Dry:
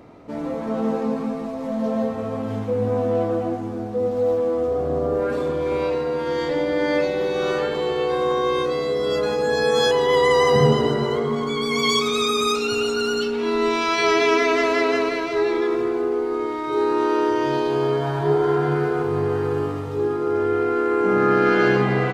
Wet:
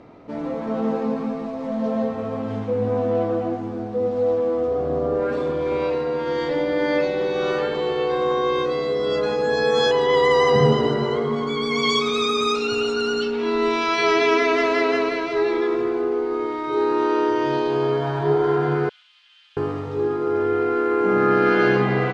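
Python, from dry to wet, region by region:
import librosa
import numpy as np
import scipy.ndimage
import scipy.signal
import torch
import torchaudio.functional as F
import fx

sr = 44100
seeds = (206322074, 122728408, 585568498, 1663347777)

y = fx.chain(x, sr, fx.ladder_highpass(hz=2900.0, resonance_pct=70),
    fx.doppler_dist(depth_ms=0.44), at=(18.89, 19.57))
y = scipy.signal.sosfilt(scipy.signal.butter(2, 5300.0, 'lowpass', fs=sr, output='sos'), y)
y = fx.peak_eq(y, sr, hz=64.0, db=-3.5, octaves=1.3)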